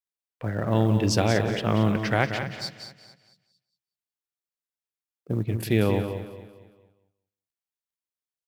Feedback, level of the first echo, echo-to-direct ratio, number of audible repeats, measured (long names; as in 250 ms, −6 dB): repeats not evenly spaced, −9.0 dB, −7.0 dB, 7